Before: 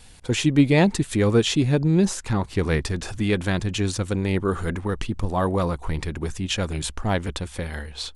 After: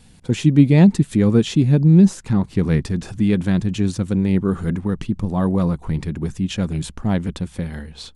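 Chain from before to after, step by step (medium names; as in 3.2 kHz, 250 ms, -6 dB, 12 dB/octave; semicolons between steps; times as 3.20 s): peaking EQ 180 Hz +14 dB 1.6 oct; trim -4.5 dB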